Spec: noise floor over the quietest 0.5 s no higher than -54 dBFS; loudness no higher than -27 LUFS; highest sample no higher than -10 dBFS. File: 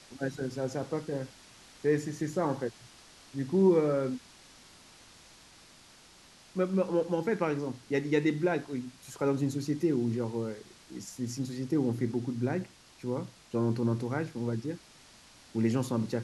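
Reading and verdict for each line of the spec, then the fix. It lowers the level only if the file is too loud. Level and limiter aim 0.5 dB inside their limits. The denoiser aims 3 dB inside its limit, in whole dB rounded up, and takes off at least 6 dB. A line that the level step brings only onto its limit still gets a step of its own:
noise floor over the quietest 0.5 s -56 dBFS: pass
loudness -31.5 LUFS: pass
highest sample -14.0 dBFS: pass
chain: none needed

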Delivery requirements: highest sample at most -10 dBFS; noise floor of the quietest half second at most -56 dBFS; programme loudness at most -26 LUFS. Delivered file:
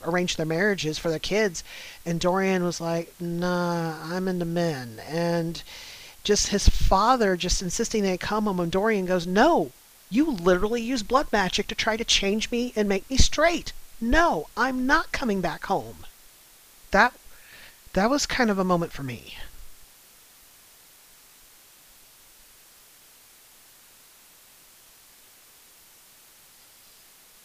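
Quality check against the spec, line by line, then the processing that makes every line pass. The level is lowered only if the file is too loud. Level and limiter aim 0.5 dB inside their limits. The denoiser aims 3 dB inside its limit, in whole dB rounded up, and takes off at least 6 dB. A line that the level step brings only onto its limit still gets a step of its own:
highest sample -4.0 dBFS: fail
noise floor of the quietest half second -53 dBFS: fail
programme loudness -24.5 LUFS: fail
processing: noise reduction 6 dB, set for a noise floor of -53 dBFS; trim -2 dB; peak limiter -10.5 dBFS

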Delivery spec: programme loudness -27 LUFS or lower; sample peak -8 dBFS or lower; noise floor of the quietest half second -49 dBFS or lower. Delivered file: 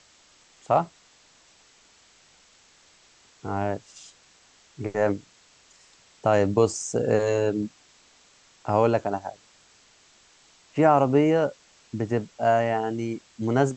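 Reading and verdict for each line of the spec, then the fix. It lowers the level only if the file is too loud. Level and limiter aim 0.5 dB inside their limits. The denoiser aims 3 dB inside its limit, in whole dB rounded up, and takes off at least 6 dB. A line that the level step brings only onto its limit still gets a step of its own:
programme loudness -24.5 LUFS: fail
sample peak -6.5 dBFS: fail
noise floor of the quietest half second -58 dBFS: pass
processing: trim -3 dB

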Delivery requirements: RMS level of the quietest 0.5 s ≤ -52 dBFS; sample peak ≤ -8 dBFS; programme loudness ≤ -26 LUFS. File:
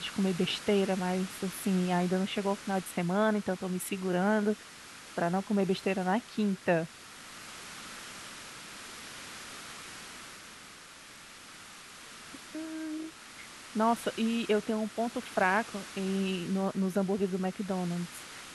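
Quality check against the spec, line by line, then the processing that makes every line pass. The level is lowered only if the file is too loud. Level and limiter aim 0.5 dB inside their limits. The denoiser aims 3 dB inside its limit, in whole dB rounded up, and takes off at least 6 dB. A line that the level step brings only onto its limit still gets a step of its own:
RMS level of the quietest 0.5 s -50 dBFS: fail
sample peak -13.0 dBFS: pass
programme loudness -31.5 LUFS: pass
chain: noise reduction 6 dB, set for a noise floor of -50 dBFS

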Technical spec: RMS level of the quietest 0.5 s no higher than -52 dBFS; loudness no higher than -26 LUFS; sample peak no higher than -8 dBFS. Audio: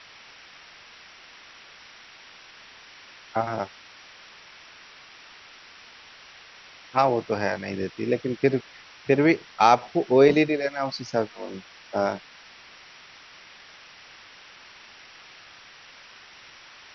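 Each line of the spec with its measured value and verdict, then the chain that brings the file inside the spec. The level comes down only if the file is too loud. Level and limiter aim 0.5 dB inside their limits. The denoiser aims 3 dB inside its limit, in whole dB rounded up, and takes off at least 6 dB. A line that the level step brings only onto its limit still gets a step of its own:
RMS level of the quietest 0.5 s -49 dBFS: fail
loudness -24.0 LUFS: fail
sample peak -4.5 dBFS: fail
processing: noise reduction 6 dB, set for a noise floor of -49 dBFS; trim -2.5 dB; peak limiter -8.5 dBFS

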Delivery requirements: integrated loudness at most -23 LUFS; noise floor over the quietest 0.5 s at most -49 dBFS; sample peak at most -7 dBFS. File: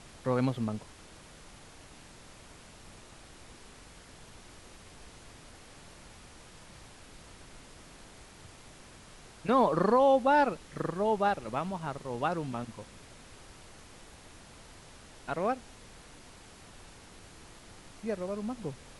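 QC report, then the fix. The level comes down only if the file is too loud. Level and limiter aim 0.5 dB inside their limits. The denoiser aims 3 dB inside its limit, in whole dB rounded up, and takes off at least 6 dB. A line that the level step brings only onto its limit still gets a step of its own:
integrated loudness -30.0 LUFS: pass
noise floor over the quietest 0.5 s -52 dBFS: pass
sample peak -14.0 dBFS: pass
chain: none needed

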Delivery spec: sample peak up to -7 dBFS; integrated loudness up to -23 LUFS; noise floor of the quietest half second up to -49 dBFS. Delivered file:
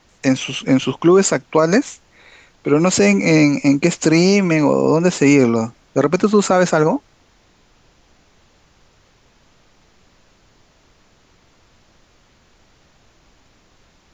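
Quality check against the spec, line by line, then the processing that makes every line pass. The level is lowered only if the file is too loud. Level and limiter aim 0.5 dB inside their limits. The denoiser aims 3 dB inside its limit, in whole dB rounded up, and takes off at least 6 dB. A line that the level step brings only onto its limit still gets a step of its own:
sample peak -3.0 dBFS: fail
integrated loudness -15.5 LUFS: fail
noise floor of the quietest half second -55 dBFS: pass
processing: trim -8 dB

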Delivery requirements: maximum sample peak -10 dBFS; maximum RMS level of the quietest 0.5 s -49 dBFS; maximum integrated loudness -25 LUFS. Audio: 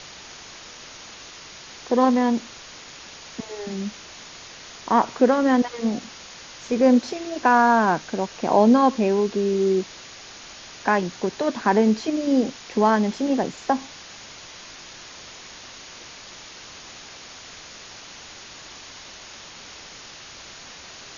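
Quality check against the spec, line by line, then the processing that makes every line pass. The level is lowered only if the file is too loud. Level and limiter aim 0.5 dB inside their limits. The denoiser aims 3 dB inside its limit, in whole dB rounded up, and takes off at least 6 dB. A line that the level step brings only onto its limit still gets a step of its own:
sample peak -5.0 dBFS: fail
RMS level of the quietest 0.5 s -42 dBFS: fail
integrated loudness -21.5 LUFS: fail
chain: noise reduction 6 dB, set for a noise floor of -42 dBFS; trim -4 dB; peak limiter -10.5 dBFS

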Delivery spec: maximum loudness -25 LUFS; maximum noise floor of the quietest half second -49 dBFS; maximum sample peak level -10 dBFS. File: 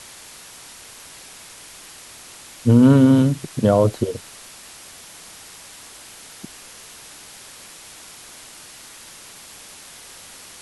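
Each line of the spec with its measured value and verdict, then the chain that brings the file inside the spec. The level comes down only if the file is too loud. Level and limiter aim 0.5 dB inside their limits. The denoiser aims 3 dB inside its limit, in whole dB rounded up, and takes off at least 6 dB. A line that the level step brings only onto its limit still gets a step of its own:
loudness -16.5 LUFS: fail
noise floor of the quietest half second -42 dBFS: fail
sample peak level -4.5 dBFS: fail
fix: trim -9 dB

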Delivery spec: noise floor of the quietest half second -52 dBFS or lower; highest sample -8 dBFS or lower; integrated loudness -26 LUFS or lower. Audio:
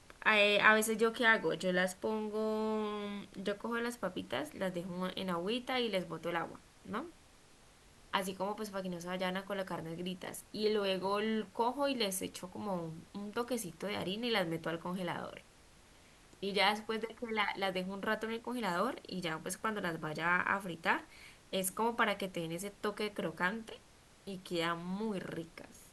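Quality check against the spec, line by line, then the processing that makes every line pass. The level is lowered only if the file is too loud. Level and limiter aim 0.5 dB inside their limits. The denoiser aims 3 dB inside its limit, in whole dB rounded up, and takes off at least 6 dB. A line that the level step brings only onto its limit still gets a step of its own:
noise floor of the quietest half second -61 dBFS: pass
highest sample -11.0 dBFS: pass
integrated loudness -35.5 LUFS: pass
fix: none needed

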